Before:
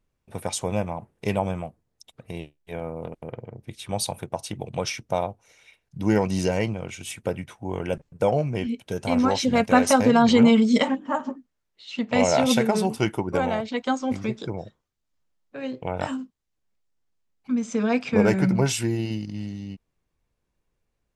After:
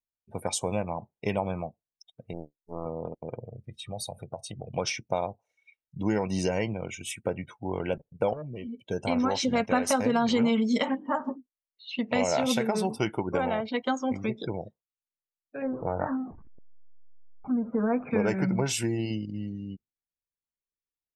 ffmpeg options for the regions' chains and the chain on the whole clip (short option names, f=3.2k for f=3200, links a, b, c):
-filter_complex "[0:a]asettb=1/sr,asplit=3[a][b][c];[a]atrim=end=2.334[d];[b]atrim=start=2.33:end=2.86,asetpts=PTS-STARTPTS,afade=t=in:d=0.004:c=qsin,afade=t=out:st=0.526:d=0.004:c=qsin,aeval=exprs='max(val(0),0)':c=same,asuperstop=centerf=2700:order=8:qfactor=0.75[e];[c]atrim=start=2.856[f];[d][e]acrossfade=d=0.004:c1=hsin:c2=qsin[g];[g][f]acrossfade=d=0.004:c1=qsin:c2=hsin,asettb=1/sr,asplit=3[h][i][j];[h]atrim=end=3.404[k];[i]atrim=start=3.4:end=4.74,asetpts=PTS-STARTPTS,afade=t=in:d=0.004:c=qsin,afade=t=out:st=1.336:d=0.004:c=qsin,lowshelf=f=200:g=4,aecho=1:1:1.6:0.42,atrim=end_sample=59094,acompressor=threshold=-35dB:ratio=2.5:attack=3.2:release=140:knee=1:detection=peak[l];[j]atrim=start=4.736[m];[k][l]acrossfade=d=0.004:c1=hsin:c2=qsin[n];[n][m]acrossfade=d=0.004:c1=qsin:c2=hsin,asettb=1/sr,asplit=3[o][p][q];[o]atrim=end=8.334[r];[p]atrim=start=8.33:end=8.86,asetpts=PTS-STARTPTS,afade=t=in:d=0.004:c=qsin,afade=t=out:st=0.526:d=0.004:c=qsin,asuperstop=centerf=1100:order=20:qfactor=0.93,asoftclip=type=hard:threshold=-22dB,acompressor=threshold=-32dB:ratio=16:attack=3.2:release=140:knee=1:detection=peak[s];[q]atrim=start=8.856[t];[r][s]acrossfade=d=0.004:c1=hsin:c2=qsin[u];[u][t]acrossfade=d=0.004:c1=qsin:c2=hsin,asettb=1/sr,asplit=3[v][w][x];[v]atrim=end=15.624[y];[w]atrim=start=15.62:end=18.11,asetpts=PTS-STARTPTS,afade=t=in:d=0.004:c=qsin,afade=t=out:st=2.486:d=0.004:c=qsin,aeval=exprs='val(0)+0.5*0.02*sgn(val(0))':c=same,lowpass=f=1.6k:w=0.5412,lowpass=f=1.6k:w=1.3066[z];[x]atrim=start=18.106[aa];[y][z]acrossfade=d=0.004:c1=hsin:c2=qsin[ab];[ab][aa]acrossfade=d=0.004:c1=qsin:c2=hsin,afftdn=nr=26:nf=-43,lowshelf=f=160:g=-5,acompressor=threshold=-24dB:ratio=2.5"